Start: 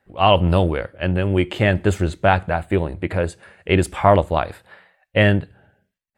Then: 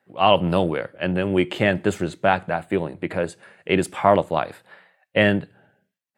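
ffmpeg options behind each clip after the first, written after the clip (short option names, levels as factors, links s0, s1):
-af "highpass=f=130:w=0.5412,highpass=f=130:w=1.3066,dynaudnorm=f=140:g=11:m=3.76,volume=0.841"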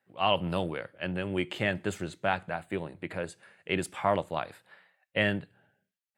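-af "equalizer=f=370:w=0.34:g=-5.5,volume=0.501"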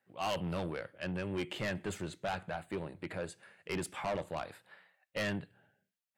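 -af "asoftclip=type=tanh:threshold=0.0398,volume=0.794"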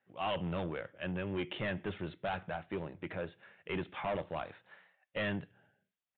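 -af "aresample=8000,aresample=44100"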